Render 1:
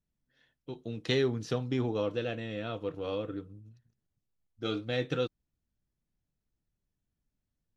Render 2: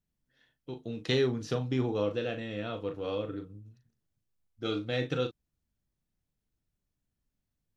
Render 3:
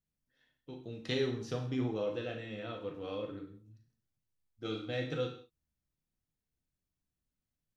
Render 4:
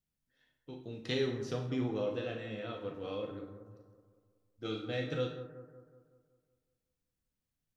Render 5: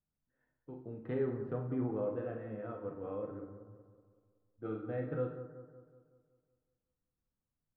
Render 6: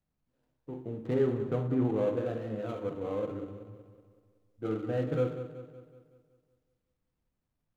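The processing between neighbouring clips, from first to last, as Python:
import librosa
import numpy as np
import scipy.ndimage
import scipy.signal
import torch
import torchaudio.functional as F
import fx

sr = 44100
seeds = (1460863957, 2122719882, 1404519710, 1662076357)

y1 = fx.doubler(x, sr, ms=39.0, db=-9)
y2 = fx.rev_gated(y1, sr, seeds[0], gate_ms=210, shape='falling', drr_db=3.5)
y2 = y2 * 10.0 ** (-6.5 / 20.0)
y3 = fx.echo_bbd(y2, sr, ms=187, stages=2048, feedback_pct=51, wet_db=-11.0)
y4 = scipy.signal.sosfilt(scipy.signal.butter(4, 1500.0, 'lowpass', fs=sr, output='sos'), y3)
y4 = y4 * 10.0 ** (-1.0 / 20.0)
y5 = scipy.signal.medfilt(y4, 25)
y5 = y5 * 10.0 ** (7.0 / 20.0)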